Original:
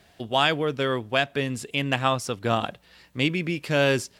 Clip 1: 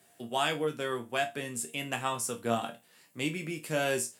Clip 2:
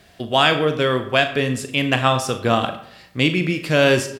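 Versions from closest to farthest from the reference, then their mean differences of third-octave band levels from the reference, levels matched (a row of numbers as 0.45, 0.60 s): 2, 1; 3.0, 5.0 dB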